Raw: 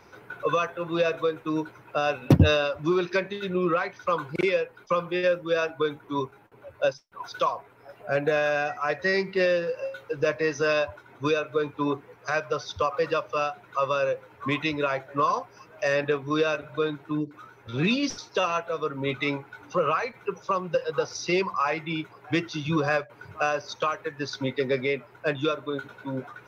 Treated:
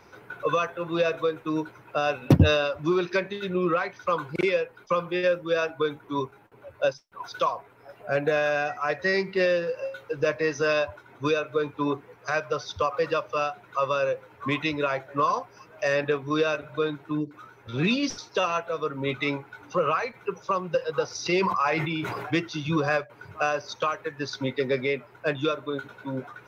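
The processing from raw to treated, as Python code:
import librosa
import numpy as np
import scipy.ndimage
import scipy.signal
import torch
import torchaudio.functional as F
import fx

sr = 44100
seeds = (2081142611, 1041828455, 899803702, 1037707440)

y = fx.sustainer(x, sr, db_per_s=26.0, at=(21.25, 22.36), fade=0.02)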